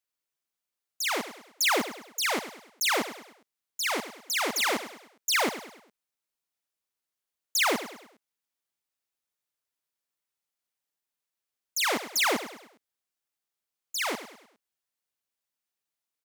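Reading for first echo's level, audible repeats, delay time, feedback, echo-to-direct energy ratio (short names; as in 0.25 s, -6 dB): -12.5 dB, 4, 0.102 s, 43%, -11.5 dB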